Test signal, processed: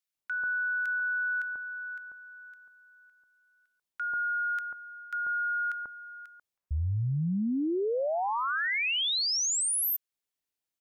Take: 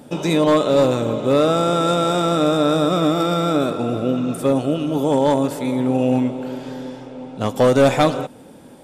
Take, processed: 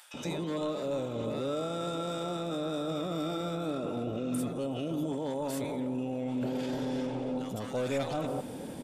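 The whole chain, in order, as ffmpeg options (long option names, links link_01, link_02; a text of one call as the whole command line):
ffmpeg -i in.wav -filter_complex "[0:a]areverse,acompressor=threshold=-25dB:ratio=6,areverse,alimiter=level_in=4dB:limit=-24dB:level=0:latency=1:release=24,volume=-4dB,acrossover=split=1200[link_01][link_02];[link_01]adelay=140[link_03];[link_03][link_02]amix=inputs=2:normalize=0,volume=2.5dB" out.wav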